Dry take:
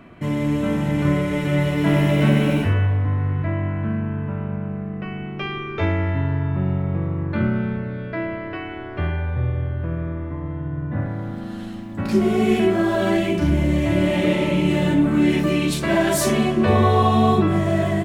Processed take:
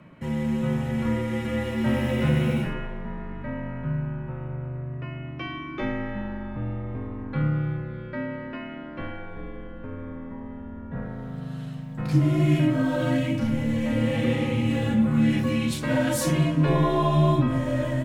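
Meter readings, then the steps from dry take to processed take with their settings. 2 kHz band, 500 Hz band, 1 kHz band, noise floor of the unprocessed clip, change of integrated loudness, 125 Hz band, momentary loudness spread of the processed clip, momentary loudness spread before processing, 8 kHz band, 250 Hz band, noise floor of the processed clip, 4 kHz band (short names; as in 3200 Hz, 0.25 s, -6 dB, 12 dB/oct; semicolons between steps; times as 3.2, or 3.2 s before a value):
-6.0 dB, -7.0 dB, -7.5 dB, -31 dBFS, -5.0 dB, -4.5 dB, 15 LU, 12 LU, n/a, -4.5 dB, -37 dBFS, -6.0 dB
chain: resonant low shelf 170 Hz -6.5 dB, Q 3; frequency shift -69 Hz; gain -6 dB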